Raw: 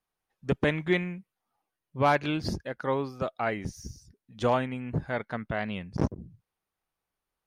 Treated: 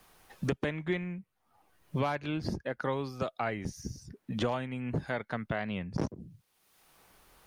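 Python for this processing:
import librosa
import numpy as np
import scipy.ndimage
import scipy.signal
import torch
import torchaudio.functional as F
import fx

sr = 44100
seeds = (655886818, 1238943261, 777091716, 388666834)

y = fx.band_squash(x, sr, depth_pct=100)
y = y * 10.0 ** (-4.5 / 20.0)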